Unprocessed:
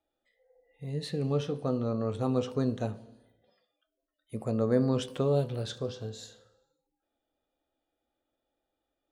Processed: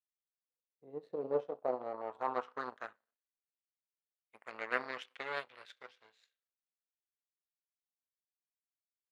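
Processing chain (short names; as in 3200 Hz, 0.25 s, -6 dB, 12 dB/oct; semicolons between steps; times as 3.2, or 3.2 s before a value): power-law curve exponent 2; band-pass sweep 220 Hz -> 2100 Hz, 0.09–3.31; low shelf 240 Hz -12 dB; gain +13.5 dB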